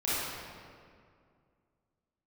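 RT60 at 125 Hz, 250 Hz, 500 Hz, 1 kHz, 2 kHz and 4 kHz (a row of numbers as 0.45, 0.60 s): 2.6, 2.6, 2.3, 2.1, 1.8, 1.4 s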